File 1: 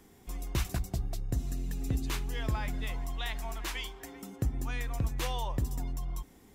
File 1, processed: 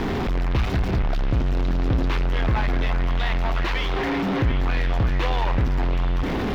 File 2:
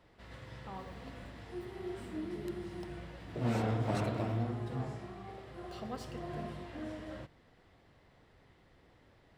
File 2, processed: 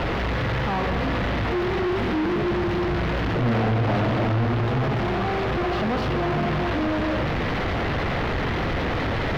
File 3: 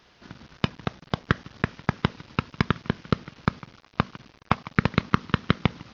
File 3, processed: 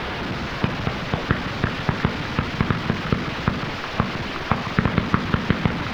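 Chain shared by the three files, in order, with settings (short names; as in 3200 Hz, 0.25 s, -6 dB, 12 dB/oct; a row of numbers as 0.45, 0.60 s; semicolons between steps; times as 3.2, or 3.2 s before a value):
zero-crossing step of -19.5 dBFS; air absorption 300 m; delay with a stepping band-pass 0.362 s, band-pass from 1600 Hz, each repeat 0.7 oct, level -6 dB; match loudness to -24 LUFS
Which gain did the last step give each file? +3.0, +2.0, +0.5 dB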